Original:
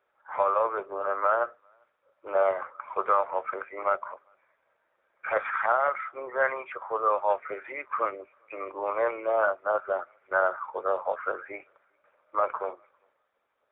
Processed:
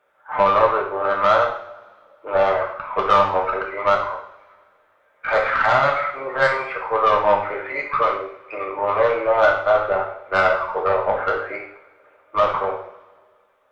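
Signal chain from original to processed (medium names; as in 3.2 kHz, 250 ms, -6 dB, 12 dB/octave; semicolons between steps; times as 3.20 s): 9.88–11.07 s: high-pass 240 Hz 24 dB/octave; valve stage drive 19 dB, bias 0.35; two-slope reverb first 0.57 s, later 2.1 s, from -22 dB, DRR -1 dB; trim +8 dB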